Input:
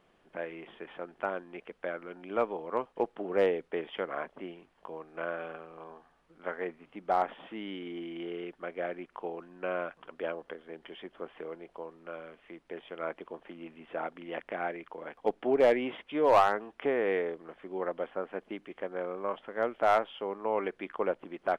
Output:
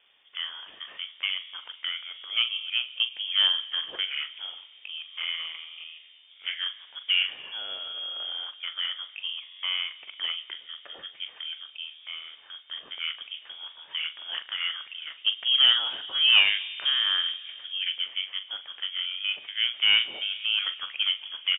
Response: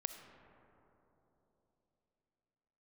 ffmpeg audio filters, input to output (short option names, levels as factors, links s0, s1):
-filter_complex "[0:a]asplit=2[s0][s1];[1:a]atrim=start_sample=2205[s2];[s1][s2]afir=irnorm=-1:irlink=0,volume=0.596[s3];[s0][s3]amix=inputs=2:normalize=0,lowpass=f=3100:t=q:w=0.5098,lowpass=f=3100:t=q:w=0.6013,lowpass=f=3100:t=q:w=0.9,lowpass=f=3100:t=q:w=2.563,afreqshift=-3600,asplit=2[s4][s5];[s5]adelay=42,volume=0.266[s6];[s4][s6]amix=inputs=2:normalize=0"